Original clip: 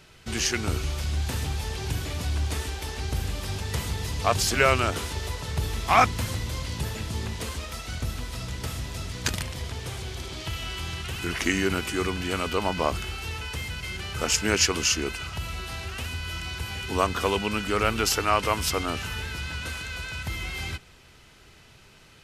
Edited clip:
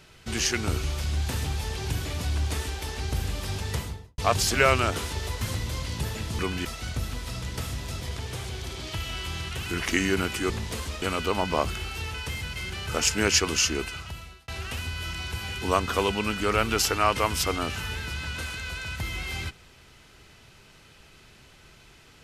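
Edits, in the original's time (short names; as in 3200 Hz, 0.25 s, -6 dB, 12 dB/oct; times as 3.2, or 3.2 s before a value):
3.68–4.18 studio fade out
5.41–6.21 cut
7.19–7.71 swap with 12.03–12.29
9.07–9.54 cut
15.08–15.75 fade out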